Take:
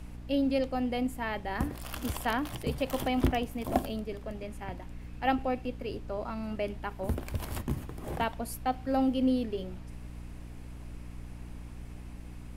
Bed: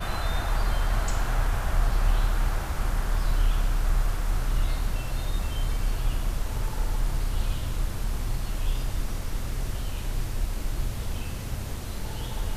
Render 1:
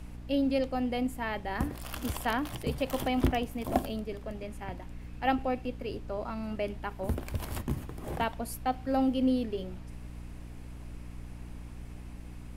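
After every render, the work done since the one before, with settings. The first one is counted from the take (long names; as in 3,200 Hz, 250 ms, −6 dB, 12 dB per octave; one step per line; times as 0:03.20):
no processing that can be heard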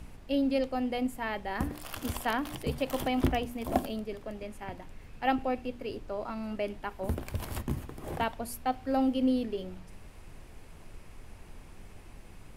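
hum removal 60 Hz, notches 5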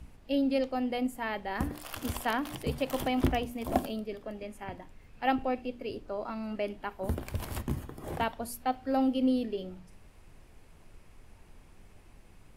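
noise reduction from a noise print 6 dB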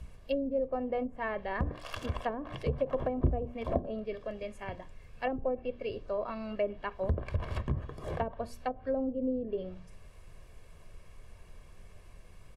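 treble cut that deepens with the level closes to 470 Hz, closed at −25.5 dBFS
comb filter 1.8 ms, depth 54%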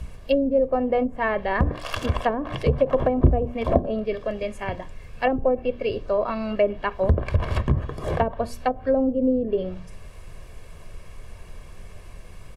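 level +11 dB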